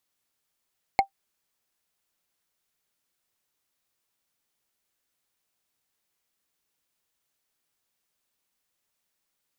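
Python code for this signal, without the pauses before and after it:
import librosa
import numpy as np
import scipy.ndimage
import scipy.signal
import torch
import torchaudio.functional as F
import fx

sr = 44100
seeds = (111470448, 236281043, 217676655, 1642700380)

y = fx.strike_wood(sr, length_s=0.45, level_db=-10.5, body='bar', hz=785.0, decay_s=0.1, tilt_db=6, modes=5)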